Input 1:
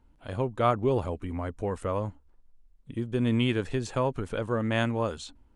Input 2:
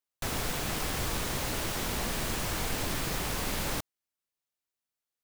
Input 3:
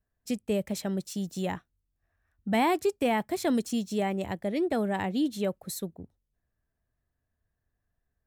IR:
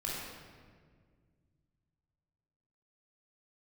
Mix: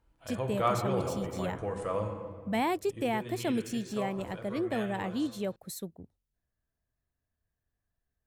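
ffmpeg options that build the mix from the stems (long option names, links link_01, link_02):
-filter_complex "[0:a]highpass=45,equalizer=frequency=170:width=0.44:gain=-5.5,aecho=1:1:6.1:0.39,volume=-6dB,afade=type=out:start_time=2.67:duration=0.62:silence=0.316228,asplit=2[link_01][link_02];[link_02]volume=-3.5dB[link_03];[2:a]volume=-4.5dB[link_04];[3:a]atrim=start_sample=2205[link_05];[link_03][link_05]afir=irnorm=-1:irlink=0[link_06];[link_01][link_04][link_06]amix=inputs=3:normalize=0"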